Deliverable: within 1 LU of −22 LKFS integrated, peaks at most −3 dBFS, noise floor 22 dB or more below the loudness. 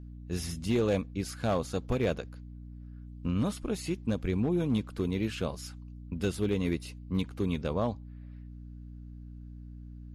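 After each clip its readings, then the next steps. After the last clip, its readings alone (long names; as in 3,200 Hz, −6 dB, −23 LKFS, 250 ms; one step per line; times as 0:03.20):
share of clipped samples 0.4%; peaks flattened at −20.5 dBFS; mains hum 60 Hz; hum harmonics up to 300 Hz; level of the hum −42 dBFS; integrated loudness −32.0 LKFS; sample peak −20.5 dBFS; target loudness −22.0 LKFS
→ clipped peaks rebuilt −20.5 dBFS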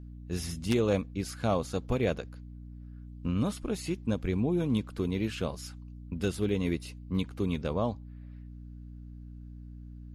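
share of clipped samples 0.0%; mains hum 60 Hz; hum harmonics up to 300 Hz; level of the hum −42 dBFS
→ hum removal 60 Hz, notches 5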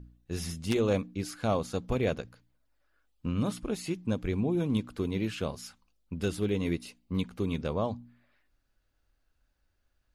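mains hum none found; integrated loudness −32.0 LKFS; sample peak −12.0 dBFS; target loudness −22.0 LKFS
→ level +10 dB
brickwall limiter −3 dBFS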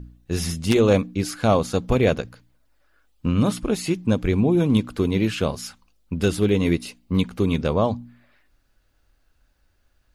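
integrated loudness −22.0 LKFS; sample peak −3.0 dBFS; background noise floor −65 dBFS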